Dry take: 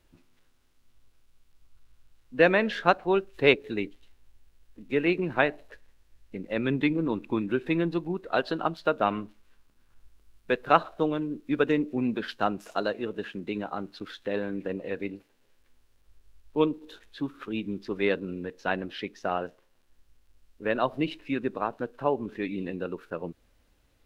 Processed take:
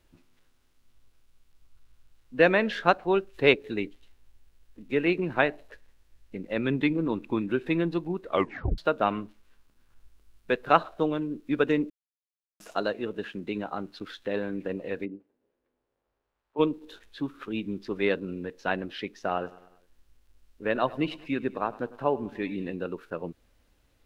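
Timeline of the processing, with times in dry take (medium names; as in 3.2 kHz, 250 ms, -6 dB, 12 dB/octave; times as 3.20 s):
8.28 s: tape stop 0.50 s
11.90–12.60 s: mute
15.04–16.58 s: band-pass filter 240 Hz -> 980 Hz, Q 1.1
19.27–22.67 s: feedback delay 100 ms, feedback 56%, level -20 dB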